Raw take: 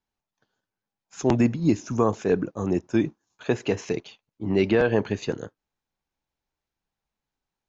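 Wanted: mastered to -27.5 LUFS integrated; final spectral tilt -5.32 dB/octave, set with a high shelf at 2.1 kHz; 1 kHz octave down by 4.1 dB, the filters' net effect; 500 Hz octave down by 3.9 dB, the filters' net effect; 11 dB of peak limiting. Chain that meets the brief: peaking EQ 500 Hz -4.5 dB; peaking EQ 1 kHz -4.5 dB; treble shelf 2.1 kHz +4 dB; trim +5.5 dB; peak limiter -15.5 dBFS

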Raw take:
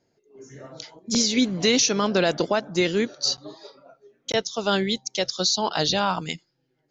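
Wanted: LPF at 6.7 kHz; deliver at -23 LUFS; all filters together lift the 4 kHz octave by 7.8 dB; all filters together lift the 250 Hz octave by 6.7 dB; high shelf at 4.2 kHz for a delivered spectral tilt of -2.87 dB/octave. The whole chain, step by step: low-pass 6.7 kHz; peaking EQ 250 Hz +8 dB; peaking EQ 4 kHz +7.5 dB; treble shelf 4.2 kHz +4 dB; trim -5.5 dB

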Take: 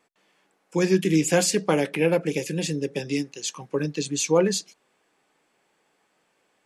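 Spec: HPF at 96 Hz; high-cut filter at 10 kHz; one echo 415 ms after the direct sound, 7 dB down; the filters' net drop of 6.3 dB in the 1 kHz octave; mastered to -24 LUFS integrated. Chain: high-pass 96 Hz; low-pass 10 kHz; peaking EQ 1 kHz -9 dB; delay 415 ms -7 dB; trim +1 dB

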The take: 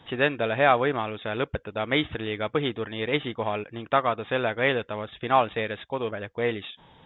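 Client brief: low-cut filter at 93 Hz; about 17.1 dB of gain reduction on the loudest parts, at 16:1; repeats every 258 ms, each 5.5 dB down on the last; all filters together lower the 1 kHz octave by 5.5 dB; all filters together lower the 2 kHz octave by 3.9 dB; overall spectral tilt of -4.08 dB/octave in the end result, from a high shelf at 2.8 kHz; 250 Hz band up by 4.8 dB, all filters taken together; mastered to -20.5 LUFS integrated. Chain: high-pass 93 Hz; peaking EQ 250 Hz +6.5 dB; peaking EQ 1 kHz -8 dB; peaking EQ 2 kHz -4.5 dB; treble shelf 2.8 kHz +5 dB; compression 16:1, threshold -35 dBFS; feedback delay 258 ms, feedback 53%, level -5.5 dB; trim +18.5 dB

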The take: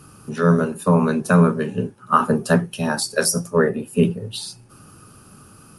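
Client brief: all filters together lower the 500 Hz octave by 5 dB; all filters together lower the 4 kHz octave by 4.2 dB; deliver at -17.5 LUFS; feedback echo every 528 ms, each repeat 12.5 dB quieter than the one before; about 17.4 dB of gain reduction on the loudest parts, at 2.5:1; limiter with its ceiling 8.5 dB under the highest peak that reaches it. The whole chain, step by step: peaking EQ 500 Hz -6 dB; peaking EQ 4 kHz -5.5 dB; compression 2.5:1, threshold -39 dBFS; peak limiter -28 dBFS; feedback delay 528 ms, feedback 24%, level -12.5 dB; trim +21.5 dB

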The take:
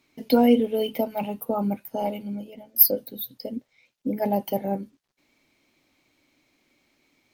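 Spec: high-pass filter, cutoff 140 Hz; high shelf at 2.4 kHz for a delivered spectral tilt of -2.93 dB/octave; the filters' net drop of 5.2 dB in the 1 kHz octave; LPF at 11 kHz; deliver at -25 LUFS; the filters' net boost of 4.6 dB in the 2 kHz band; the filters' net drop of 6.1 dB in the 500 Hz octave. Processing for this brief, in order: high-pass 140 Hz; low-pass 11 kHz; peaking EQ 500 Hz -6 dB; peaking EQ 1 kHz -6 dB; peaking EQ 2 kHz +4 dB; treble shelf 2.4 kHz +6 dB; trim +0.5 dB

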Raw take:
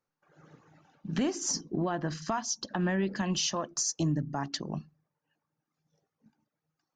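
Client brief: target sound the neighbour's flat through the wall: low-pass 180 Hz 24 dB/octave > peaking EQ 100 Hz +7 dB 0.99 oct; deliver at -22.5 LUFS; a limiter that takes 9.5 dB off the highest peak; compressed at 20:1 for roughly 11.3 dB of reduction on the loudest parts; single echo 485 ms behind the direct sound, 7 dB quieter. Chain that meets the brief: compression 20:1, threshold -36 dBFS; peak limiter -33 dBFS; low-pass 180 Hz 24 dB/octave; peaking EQ 100 Hz +7 dB 0.99 oct; delay 485 ms -7 dB; trim +25 dB

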